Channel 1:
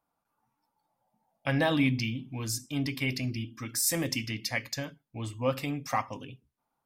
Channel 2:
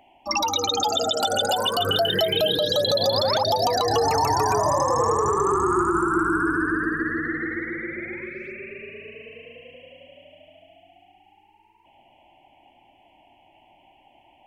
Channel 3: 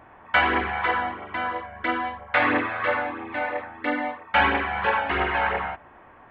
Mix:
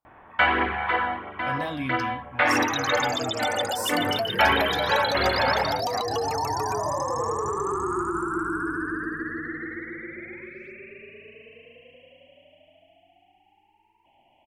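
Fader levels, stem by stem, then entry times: -6.0, -6.0, -0.5 dB; 0.00, 2.20, 0.05 s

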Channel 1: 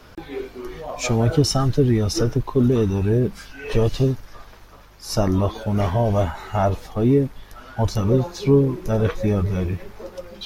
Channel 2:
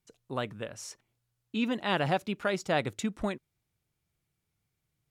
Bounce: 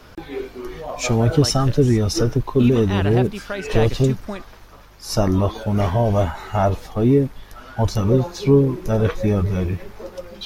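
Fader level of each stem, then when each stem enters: +1.5, +1.5 dB; 0.00, 1.05 s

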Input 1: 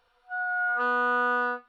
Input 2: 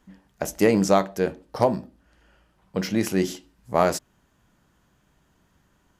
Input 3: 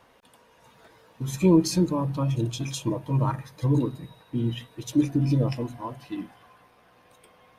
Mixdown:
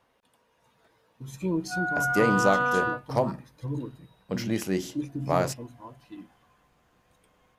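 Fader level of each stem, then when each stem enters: 0.0, -5.0, -10.0 dB; 1.40, 1.55, 0.00 s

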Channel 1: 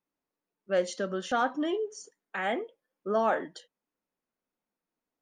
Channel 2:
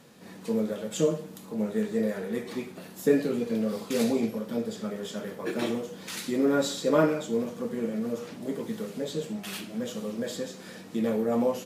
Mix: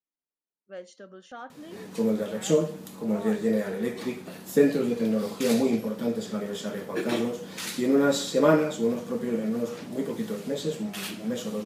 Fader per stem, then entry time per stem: -14.0, +2.5 dB; 0.00, 1.50 s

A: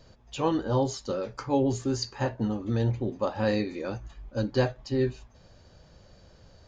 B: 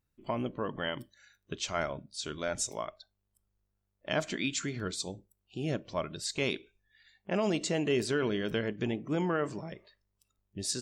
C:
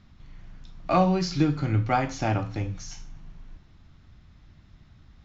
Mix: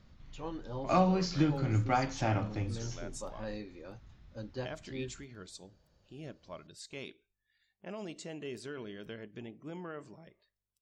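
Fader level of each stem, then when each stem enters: -15.0, -13.0, -5.5 dB; 0.00, 0.55, 0.00 s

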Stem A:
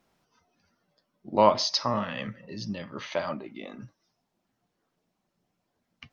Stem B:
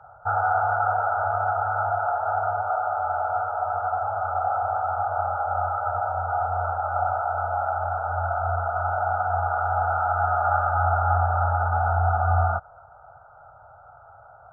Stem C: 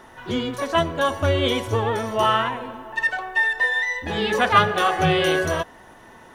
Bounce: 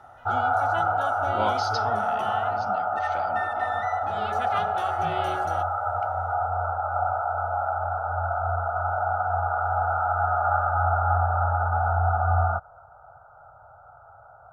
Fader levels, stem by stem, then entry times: -8.5, -1.0, -15.0 dB; 0.00, 0.00, 0.00 s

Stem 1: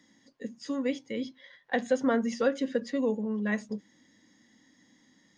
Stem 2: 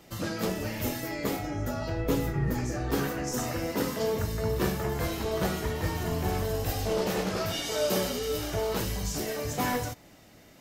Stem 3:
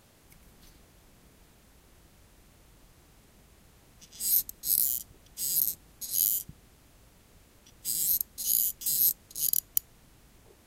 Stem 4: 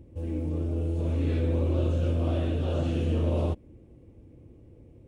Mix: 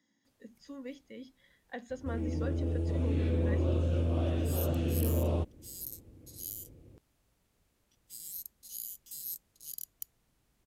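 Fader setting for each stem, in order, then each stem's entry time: -13.5 dB, off, -15.5 dB, -3.5 dB; 0.00 s, off, 0.25 s, 1.90 s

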